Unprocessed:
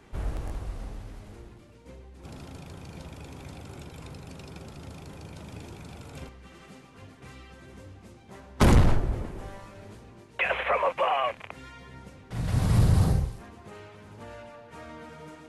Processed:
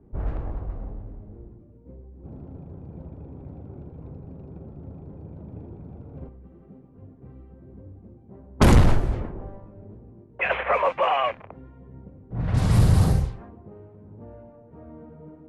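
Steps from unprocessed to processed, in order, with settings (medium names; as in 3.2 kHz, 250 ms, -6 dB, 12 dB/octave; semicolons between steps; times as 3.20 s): level-controlled noise filter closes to 350 Hz, open at -18.5 dBFS; trim +3.5 dB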